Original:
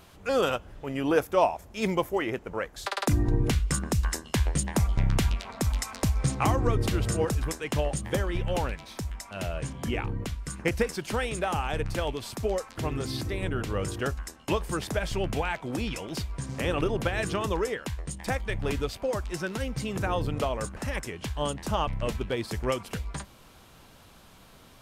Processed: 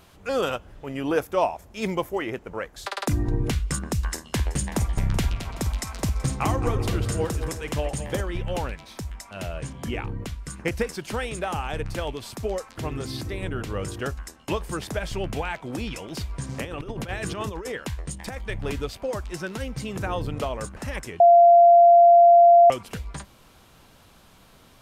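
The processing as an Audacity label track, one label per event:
4.110000	8.210000	multi-tap delay 51/217/378 ms −15/−10.5/−17 dB
16.210000	18.390000	compressor whose output falls as the input rises −30 dBFS, ratio −0.5
21.200000	22.700000	beep over 690 Hz −9.5 dBFS

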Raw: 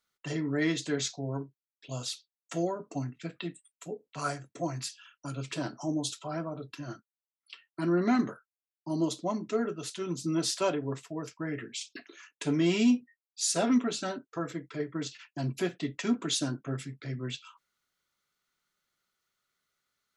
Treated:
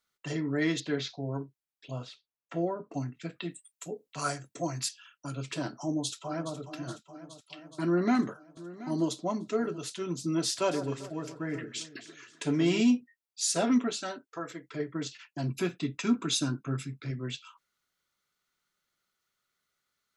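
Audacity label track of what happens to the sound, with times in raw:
0.800000	1.200000	low-pass filter 4,500 Hz 24 dB per octave
1.910000	2.940000	low-pass filter 2,200 Hz
3.480000	4.890000	high-shelf EQ 4,000 Hz +7 dB
5.820000	6.560000	delay throw 420 ms, feedback 70%, level −12 dB
7.840000	9.780000	single-tap delay 728 ms −17 dB
10.450000	12.810000	delay that swaps between a low-pass and a high-pass 131 ms, split 1,600 Hz, feedback 61%, level −10.5 dB
13.900000	14.700000	low-shelf EQ 290 Hz −12 dB
15.500000	17.110000	comb filter 0.8 ms, depth 45%

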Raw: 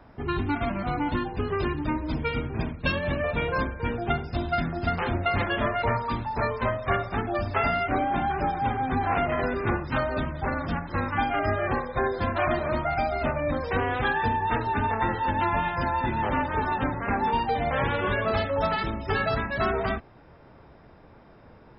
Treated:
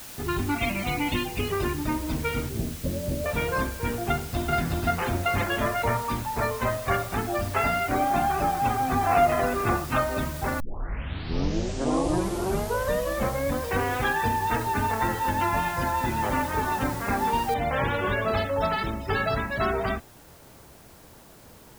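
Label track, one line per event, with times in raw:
0.580000	1.520000	high shelf with overshoot 1,900 Hz +7 dB, Q 3
2.490000	3.260000	inverse Chebyshev low-pass filter stop band from 2,000 Hz, stop band 60 dB
4.110000	4.530000	delay throw 370 ms, feedback 15%, level −1.5 dB
7.990000	10.020000	hollow resonant body resonances 710/1,200/2,600 Hz, height 10 dB
10.600000	10.600000	tape start 3.05 s
17.540000	17.540000	noise floor change −42 dB −55 dB

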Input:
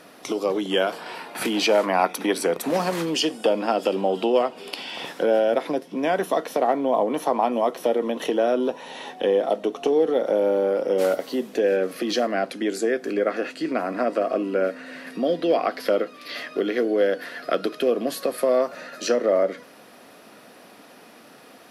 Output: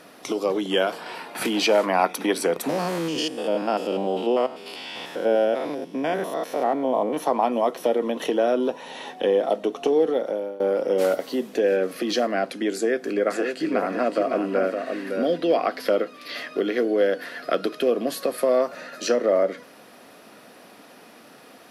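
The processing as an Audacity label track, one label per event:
2.690000	7.170000	spectrum averaged block by block every 100 ms
10.050000	10.600000	fade out, to −20.5 dB
12.740000	15.380000	single-tap delay 562 ms −6 dB

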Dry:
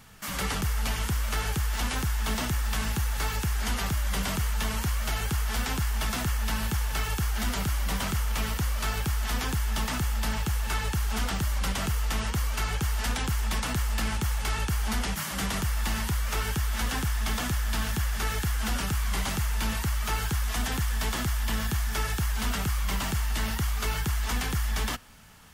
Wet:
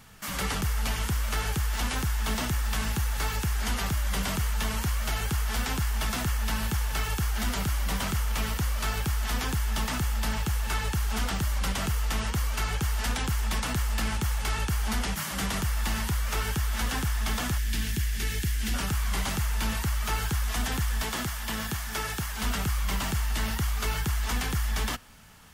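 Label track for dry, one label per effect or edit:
17.580000	18.740000	flat-topped bell 850 Hz −12.5 dB
21.020000	22.420000	high-pass filter 130 Hz 6 dB per octave

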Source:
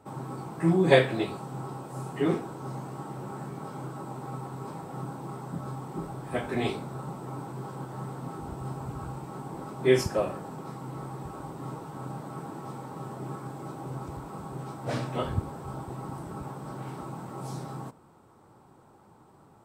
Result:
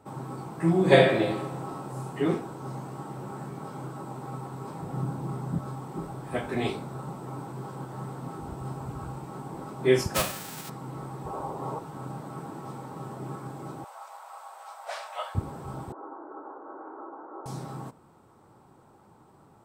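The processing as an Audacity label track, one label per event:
0.700000	1.820000	thrown reverb, RT60 0.98 s, DRR 1.5 dB
4.800000	5.590000	low-shelf EQ 210 Hz +10.5 dB
10.140000	10.680000	spectral envelope flattened exponent 0.3
11.260000	11.790000	flat-topped bell 670 Hz +8.5 dB
13.840000	15.350000	Butterworth high-pass 610 Hz 48 dB per octave
15.920000	17.460000	Chebyshev band-pass filter 300–1,500 Hz, order 4

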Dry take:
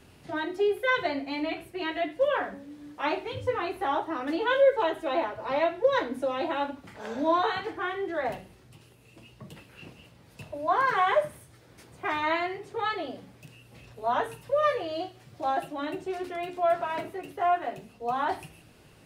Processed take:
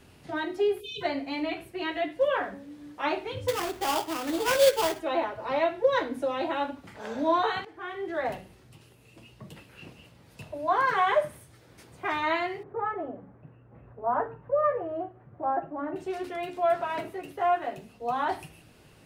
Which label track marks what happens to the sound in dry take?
0.810000	1.020000	time-frequency box erased 470–2,400 Hz
3.480000	5.000000	sample-rate reduction 4,000 Hz, jitter 20%
7.650000	8.170000	fade in, from −17 dB
12.630000	15.960000	low-pass filter 1,500 Hz 24 dB per octave

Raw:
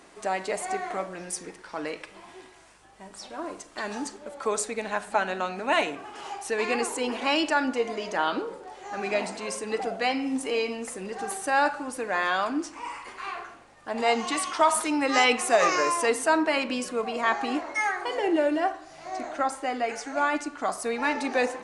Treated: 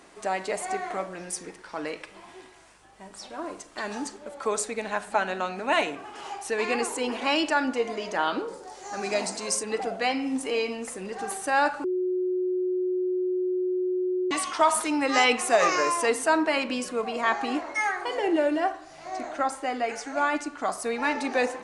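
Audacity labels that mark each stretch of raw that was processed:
8.480000	9.630000	high shelf with overshoot 4,000 Hz +7.5 dB, Q 1.5
11.840000	14.310000	beep over 366 Hz −23.5 dBFS

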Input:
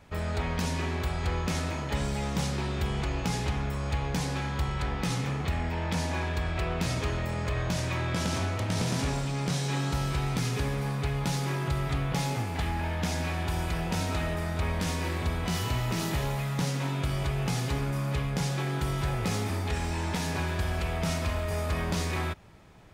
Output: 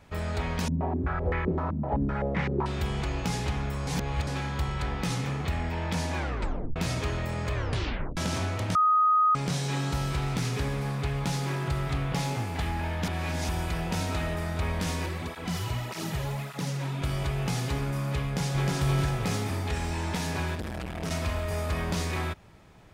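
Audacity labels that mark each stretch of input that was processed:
0.680000	2.660000	low-pass on a step sequencer 7.8 Hz 210–2,000 Hz
3.870000	4.270000	reverse
6.170000	6.170000	tape stop 0.59 s
7.540000	7.540000	tape stop 0.63 s
8.750000	9.350000	beep over 1,250 Hz −18.5 dBFS
10.160000	12.420000	highs frequency-modulated by the lows depth 0.12 ms
13.070000	13.490000	reverse
15.060000	17.020000	through-zero flanger with one copy inverted nulls at 1.7 Hz, depth 4.8 ms
18.230000	18.740000	delay throw 310 ms, feedback 40%, level −1 dB
20.550000	21.110000	saturating transformer saturates under 460 Hz

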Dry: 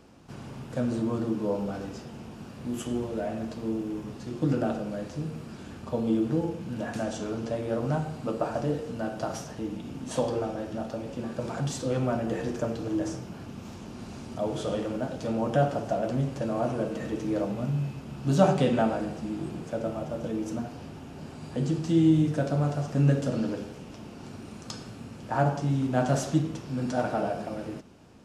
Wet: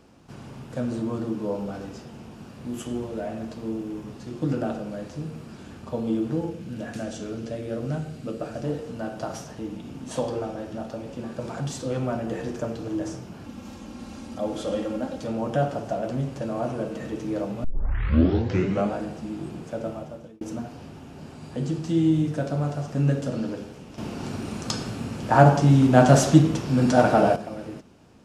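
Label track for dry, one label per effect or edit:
6.490000	8.630000	parametric band 930 Hz −6 dB → −14.5 dB
13.440000	15.240000	comb filter 3.7 ms
17.640000	17.640000	tape start 1.32 s
19.890000	20.410000	fade out
23.980000	27.360000	clip gain +10 dB

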